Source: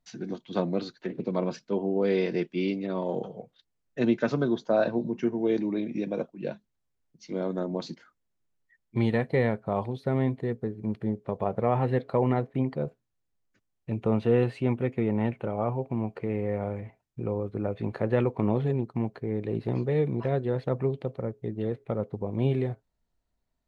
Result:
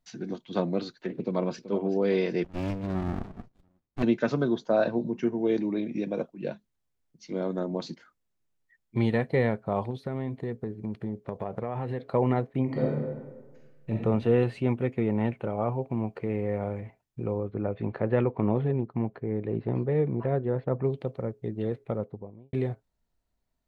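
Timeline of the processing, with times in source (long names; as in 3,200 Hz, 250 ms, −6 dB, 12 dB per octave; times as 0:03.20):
0:01.20–0:01.67: delay throw 380 ms, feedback 55%, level −13.5 dB
0:02.44–0:04.03: windowed peak hold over 65 samples
0:09.90–0:12.13: downward compressor, threshold −27 dBFS
0:12.64–0:13.92: thrown reverb, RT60 1.4 s, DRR −3.5 dB
0:17.40–0:20.83: low-pass filter 3,200 Hz → 1,700 Hz
0:21.81–0:22.53: fade out and dull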